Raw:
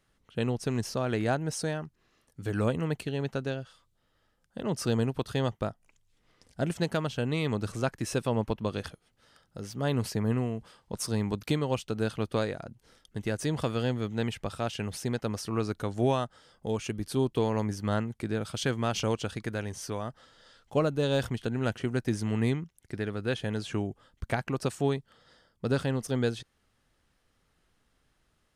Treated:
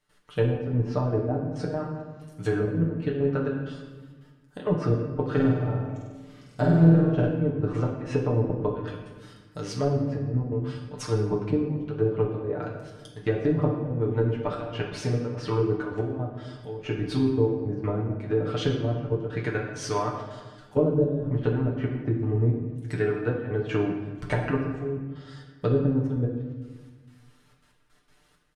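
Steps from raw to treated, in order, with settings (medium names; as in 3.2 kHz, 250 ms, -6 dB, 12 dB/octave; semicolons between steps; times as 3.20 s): low-pass that closes with the level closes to 360 Hz, closed at -24.5 dBFS; bass shelf 400 Hz -6 dB; comb 6.7 ms, depth 82%; trance gate ".x.xxx..xxxxx.x." 164 bpm -12 dB; 5.27–7.27 s: flutter echo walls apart 8.3 m, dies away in 1 s; reverberation RT60 1.4 s, pre-delay 7 ms, DRR -1 dB; trim +5.5 dB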